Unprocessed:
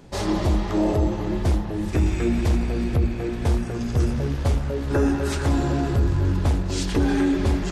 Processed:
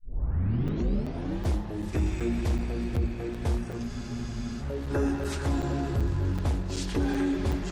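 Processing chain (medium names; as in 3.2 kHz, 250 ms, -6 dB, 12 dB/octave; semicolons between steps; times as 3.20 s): tape start-up on the opening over 1.47 s; crackling interface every 0.38 s, samples 256, zero, from 0.68 s; spectral freeze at 3.90 s, 0.71 s; trim -6.5 dB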